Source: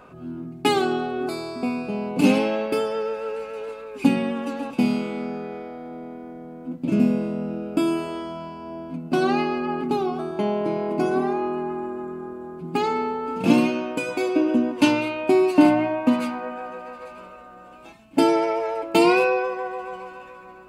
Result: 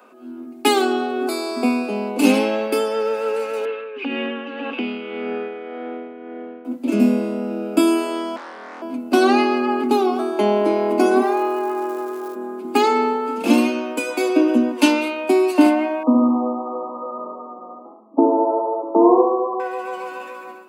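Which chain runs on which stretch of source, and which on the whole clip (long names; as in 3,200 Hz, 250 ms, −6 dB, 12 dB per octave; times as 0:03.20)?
0:03.65–0:06.65: loudspeaker in its box 280–3,200 Hz, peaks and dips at 430 Hz +4 dB, 620 Hz −4 dB, 910 Hz −5 dB, 1,700 Hz +5 dB, 2,900 Hz +9 dB + downward compressor 4 to 1, threshold −29 dBFS + amplitude tremolo 1.8 Hz, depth 55%
0:08.36–0:08.82: high-pass filter 1,100 Hz 6 dB per octave + high-frequency loss of the air 300 metres + highs frequency-modulated by the lows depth 0.9 ms
0:11.21–0:12.34: high-pass filter 360 Hz 24 dB per octave + surface crackle 520 per second −47 dBFS
0:16.03–0:19.60: linear-phase brick-wall low-pass 1,300 Hz + repeating echo 70 ms, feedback 53%, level −5 dB
whole clip: automatic gain control gain up to 10 dB; Butterworth high-pass 210 Hz 96 dB per octave; high-shelf EQ 8,100 Hz +10 dB; level −1.5 dB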